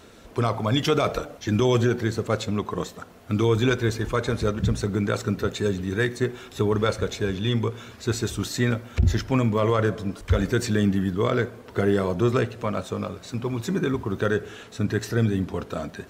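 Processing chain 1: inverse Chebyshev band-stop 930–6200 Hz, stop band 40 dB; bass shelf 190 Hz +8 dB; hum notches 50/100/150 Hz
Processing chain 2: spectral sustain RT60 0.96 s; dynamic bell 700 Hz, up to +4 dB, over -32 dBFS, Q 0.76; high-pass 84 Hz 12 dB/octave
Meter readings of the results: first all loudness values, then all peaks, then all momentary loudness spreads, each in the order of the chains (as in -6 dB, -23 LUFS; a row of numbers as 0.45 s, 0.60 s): -22.5 LUFS, -21.0 LUFS; -5.0 dBFS, -4.0 dBFS; 9 LU, 8 LU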